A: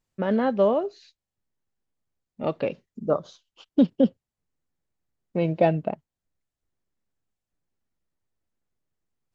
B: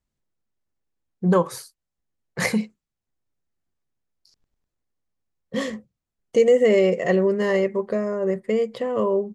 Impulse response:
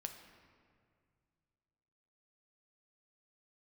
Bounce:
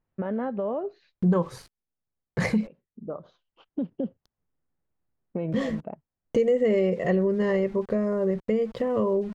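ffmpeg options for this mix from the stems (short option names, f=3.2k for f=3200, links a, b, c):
-filter_complex "[0:a]lowpass=1.7k,alimiter=limit=-19dB:level=0:latency=1:release=108,volume=2dB[a];[1:a]aeval=exprs='val(0)*gte(abs(val(0)),0.00841)':c=same,aemphasis=mode=reproduction:type=bsi,volume=3dB,asplit=2[b][c];[c]apad=whole_len=412090[d];[a][d]sidechaincompress=threshold=-22dB:ratio=12:attack=28:release=1270[e];[e][b]amix=inputs=2:normalize=0,acompressor=threshold=-28dB:ratio=2"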